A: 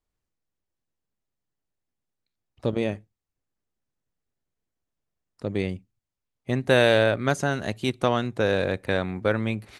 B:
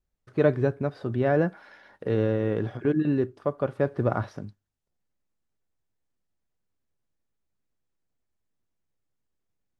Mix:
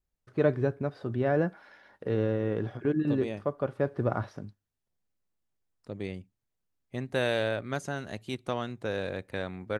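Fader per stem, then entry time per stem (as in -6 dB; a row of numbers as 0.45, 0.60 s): -9.5, -3.5 dB; 0.45, 0.00 s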